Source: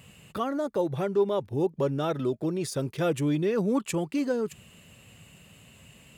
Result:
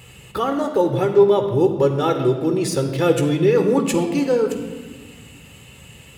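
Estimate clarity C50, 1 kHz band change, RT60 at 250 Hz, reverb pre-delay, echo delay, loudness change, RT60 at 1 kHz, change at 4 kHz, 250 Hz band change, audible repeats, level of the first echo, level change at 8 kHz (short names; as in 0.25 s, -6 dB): 7.5 dB, +10.0 dB, 2.1 s, 15 ms, none, +9.5 dB, 1.4 s, +9.5 dB, +8.0 dB, none, none, +9.0 dB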